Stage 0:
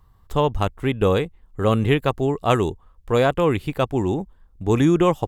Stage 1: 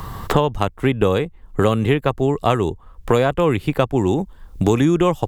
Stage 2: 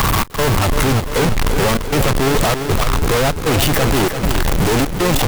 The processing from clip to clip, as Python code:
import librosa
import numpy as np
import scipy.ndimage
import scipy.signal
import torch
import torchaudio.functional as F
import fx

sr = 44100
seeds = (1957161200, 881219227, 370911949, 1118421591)

y1 = fx.band_squash(x, sr, depth_pct=100)
y1 = F.gain(torch.from_numpy(y1), 1.0).numpy()
y2 = np.sign(y1) * np.sqrt(np.mean(np.square(y1)))
y2 = fx.step_gate(y2, sr, bpm=195, pattern='xxx..xxxxx', floor_db=-24.0, edge_ms=4.5)
y2 = fx.echo_feedback(y2, sr, ms=342, feedback_pct=52, wet_db=-8.0)
y2 = F.gain(torch.from_numpy(y2), 4.0).numpy()